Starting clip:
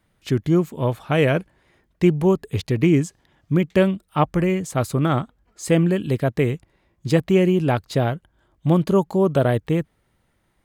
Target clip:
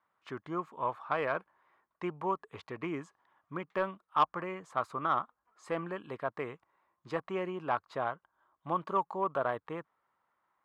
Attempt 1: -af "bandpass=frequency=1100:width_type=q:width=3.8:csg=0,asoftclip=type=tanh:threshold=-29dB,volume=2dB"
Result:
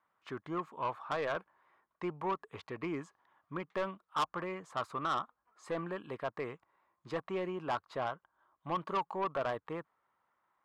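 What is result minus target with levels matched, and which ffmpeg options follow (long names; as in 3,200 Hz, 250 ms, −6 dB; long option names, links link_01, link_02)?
soft clipping: distortion +10 dB
-af "bandpass=frequency=1100:width_type=q:width=3.8:csg=0,asoftclip=type=tanh:threshold=-18.5dB,volume=2dB"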